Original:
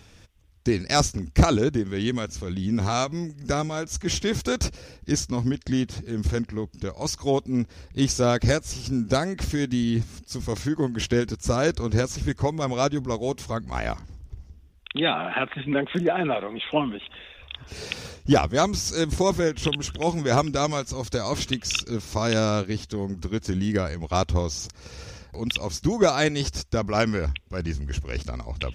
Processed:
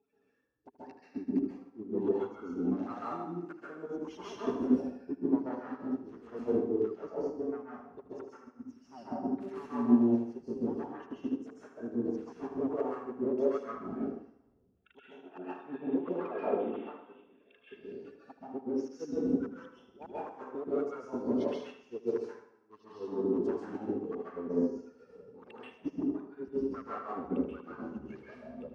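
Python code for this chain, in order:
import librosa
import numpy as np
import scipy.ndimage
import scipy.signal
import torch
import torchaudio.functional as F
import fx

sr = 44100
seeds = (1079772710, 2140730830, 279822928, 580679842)

p1 = fx.spec_quant(x, sr, step_db=30)
p2 = fx.level_steps(p1, sr, step_db=14)
p3 = p1 + (p2 * librosa.db_to_amplitude(0.0))
p4 = fx.gate_flip(p3, sr, shuts_db=-9.0, range_db=-37)
p5 = fx.small_body(p4, sr, hz=(260.0, 400.0, 2700.0), ring_ms=45, db=12)
p6 = 10.0 ** (-15.5 / 20.0) * np.tanh(p5 / 10.0 ** (-15.5 / 20.0))
p7 = fx.wah_lfo(p6, sr, hz=1.5, low_hz=270.0, high_hz=1500.0, q=2.9)
p8 = p7 + fx.echo_feedback(p7, sr, ms=77, feedback_pct=56, wet_db=-11.5, dry=0)
p9 = fx.rev_plate(p8, sr, seeds[0], rt60_s=0.81, hf_ratio=0.75, predelay_ms=120, drr_db=-7.0)
p10 = fx.upward_expand(p9, sr, threshold_db=-40.0, expansion=1.5)
y = p10 * librosa.db_to_amplitude(-7.0)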